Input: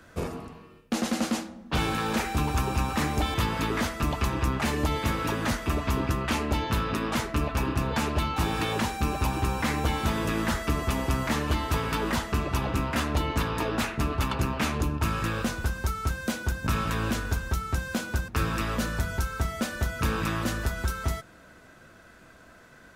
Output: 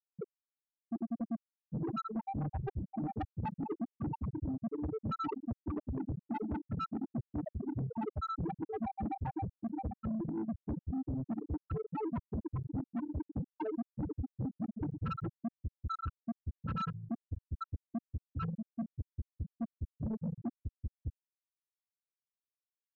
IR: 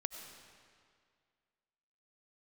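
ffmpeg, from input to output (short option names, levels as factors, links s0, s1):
-af "highpass=110,afftfilt=real='re*gte(hypot(re,im),0.224)':imag='im*gte(hypot(re,im),0.224)':win_size=1024:overlap=0.75,areverse,acompressor=threshold=0.0158:ratio=6,areverse,asoftclip=type=tanh:threshold=0.0119,volume=2.24"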